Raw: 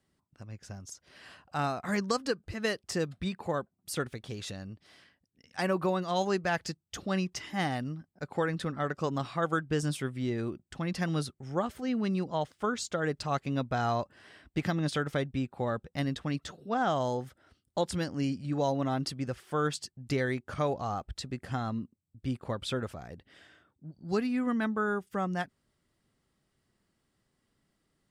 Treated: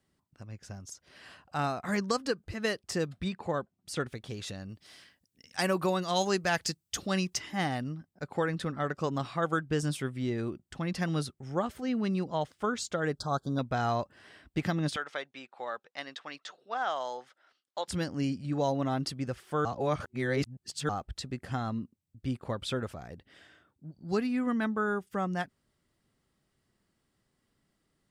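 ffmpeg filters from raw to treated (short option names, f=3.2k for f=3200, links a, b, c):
-filter_complex "[0:a]asettb=1/sr,asplit=3[a][b][c];[a]atrim=end=3.284[d];[b]atrim=start=3.28:end=4.07,asetpts=PTS-STARTPTS,afade=t=in:d=0.004:c=qsin,afade=t=out:st=0.786:d=0.004:c=qsin,lowpass=8k[e];[c]atrim=start=4.066[f];[d][e]acrossfade=d=0.004:c1=hsin:c2=qsin[g];[g][f]acrossfade=d=0.004:c1=qsin:c2=hsin,asplit=3[h][i][j];[h]afade=t=out:st=4.68:d=0.02[k];[i]highshelf=f=3.5k:g=10.5,afade=t=in:st=4.68:d=0.02,afade=t=out:st=7.36:d=0.02[l];[j]afade=t=in:st=7.36:d=0.02[m];[k][l][m]amix=inputs=3:normalize=0,asettb=1/sr,asplit=3[n][o][p];[n]atrim=end=13.164[q];[o]atrim=start=13.16:end=13.59,asetpts=PTS-STARTPTS,afade=t=in:d=0.004:c=qsin,afade=t=out:st=0.426:d=0.004:c=qsin,asuperstop=centerf=2300:order=20:qfactor=1.4[r];[p]atrim=start=13.586[s];[q][r]acrossfade=d=0.004:c1=hsin:c2=qsin[t];[t][s]acrossfade=d=0.004:c1=qsin:c2=hsin,asettb=1/sr,asplit=3[u][v][w];[u]atrim=end=14.964[x];[v]atrim=start=14.96:end=17.88,asetpts=PTS-STARTPTS,afade=t=in:d=0.004:c=qsin,afade=t=out:st=2.916:d=0.004:c=qsin,highpass=750,lowpass=5.7k[y];[w]atrim=start=17.876[z];[x][y]acrossfade=d=0.004:c1=hsin:c2=qsin[aa];[aa][z]acrossfade=d=0.004:c1=qsin:c2=hsin,asplit=3[ab][ac][ad];[ab]atrim=end=19.652[ae];[ac]atrim=start=19.648:end=20.892,asetpts=PTS-STARTPTS,areverse[af];[ad]atrim=start=20.888[ag];[ae][af]acrossfade=d=0.004:c1=hsin:c2=hsin[ah];[ah][ag]acrossfade=d=0.004:c1=hsin:c2=hsin"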